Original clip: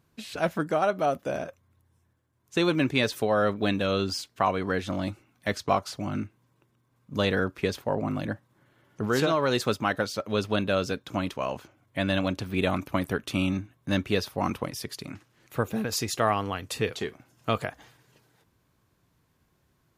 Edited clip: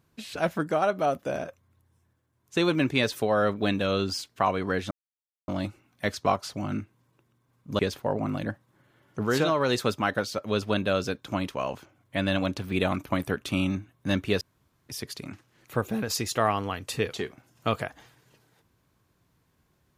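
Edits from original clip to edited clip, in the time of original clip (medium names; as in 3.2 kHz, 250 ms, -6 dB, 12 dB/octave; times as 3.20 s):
4.91 s: insert silence 0.57 s
7.22–7.61 s: delete
14.23–14.71 s: room tone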